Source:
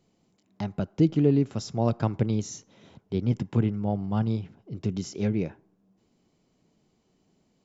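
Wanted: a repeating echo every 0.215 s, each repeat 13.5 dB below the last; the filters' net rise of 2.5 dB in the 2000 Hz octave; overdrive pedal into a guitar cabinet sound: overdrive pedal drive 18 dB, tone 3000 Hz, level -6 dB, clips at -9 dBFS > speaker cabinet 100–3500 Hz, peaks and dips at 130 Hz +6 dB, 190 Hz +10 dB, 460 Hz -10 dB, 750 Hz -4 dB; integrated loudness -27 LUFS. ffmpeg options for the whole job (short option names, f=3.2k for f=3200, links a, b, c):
-filter_complex "[0:a]equalizer=f=2k:t=o:g=3.5,aecho=1:1:215|430:0.211|0.0444,asplit=2[a][b];[b]highpass=f=720:p=1,volume=18dB,asoftclip=type=tanh:threshold=-9dB[c];[a][c]amix=inputs=2:normalize=0,lowpass=f=3k:p=1,volume=-6dB,highpass=100,equalizer=f=130:t=q:w=4:g=6,equalizer=f=190:t=q:w=4:g=10,equalizer=f=460:t=q:w=4:g=-10,equalizer=f=750:t=q:w=4:g=-4,lowpass=f=3.5k:w=0.5412,lowpass=f=3.5k:w=1.3066,volume=-3.5dB"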